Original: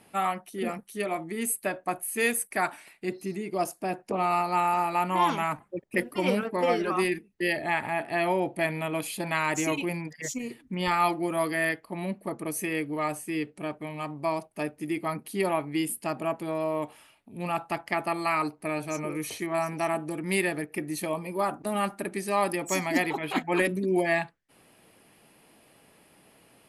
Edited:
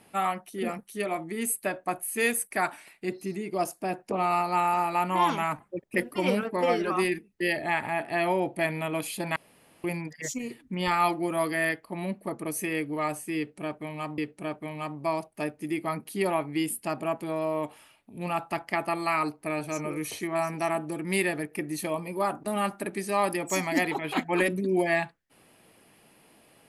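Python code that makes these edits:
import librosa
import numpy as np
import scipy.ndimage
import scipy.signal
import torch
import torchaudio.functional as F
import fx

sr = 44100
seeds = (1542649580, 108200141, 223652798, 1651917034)

y = fx.edit(x, sr, fx.room_tone_fill(start_s=9.36, length_s=0.48),
    fx.repeat(start_s=13.37, length_s=0.81, count=2), tone=tone)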